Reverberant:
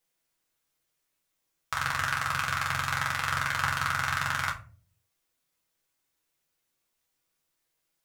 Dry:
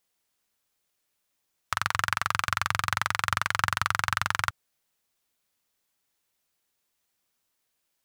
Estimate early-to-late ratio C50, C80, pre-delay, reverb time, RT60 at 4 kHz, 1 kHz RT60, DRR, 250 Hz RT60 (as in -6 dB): 11.5 dB, 17.0 dB, 6 ms, 0.40 s, 0.25 s, 0.35 s, -2.5 dB, 0.65 s